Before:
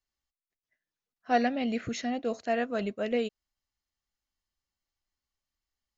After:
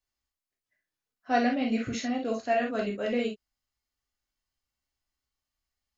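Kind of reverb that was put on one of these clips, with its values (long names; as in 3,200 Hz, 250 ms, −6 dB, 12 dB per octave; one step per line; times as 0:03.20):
reverb whose tail is shaped and stops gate 80 ms flat, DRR −0.5 dB
level −1.5 dB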